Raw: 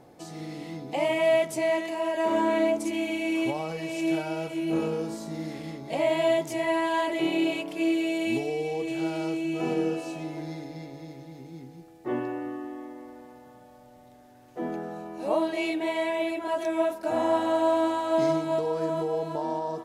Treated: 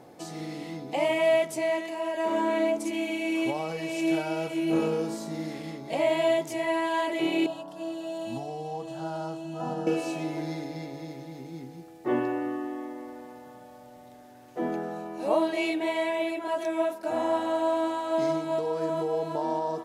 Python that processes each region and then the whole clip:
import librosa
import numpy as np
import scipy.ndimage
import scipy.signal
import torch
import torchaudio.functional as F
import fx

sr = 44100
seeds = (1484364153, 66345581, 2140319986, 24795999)

y = fx.chain(x, sr, fx.high_shelf(hz=4400.0, db=-11.5),
    fx.fixed_phaser(hz=940.0, stages=4), at=(7.46, 9.87))
y = fx.low_shelf(y, sr, hz=80.0, db=-11.5)
y = fx.rider(y, sr, range_db=4, speed_s=2.0)